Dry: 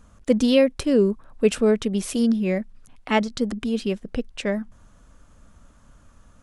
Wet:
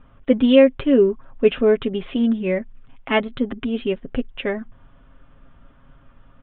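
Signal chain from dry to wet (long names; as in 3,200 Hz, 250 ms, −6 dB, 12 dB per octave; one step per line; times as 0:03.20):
Butterworth low-pass 3,500 Hz 96 dB per octave
comb filter 7.4 ms, depth 55%
level +1.5 dB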